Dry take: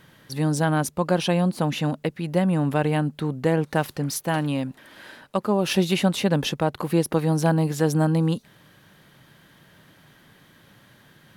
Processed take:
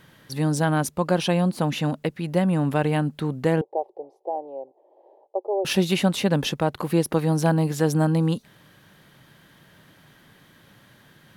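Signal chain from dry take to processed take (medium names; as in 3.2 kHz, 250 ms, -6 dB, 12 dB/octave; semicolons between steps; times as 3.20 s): 3.61–5.65 s: elliptic band-pass 370–830 Hz, stop band 40 dB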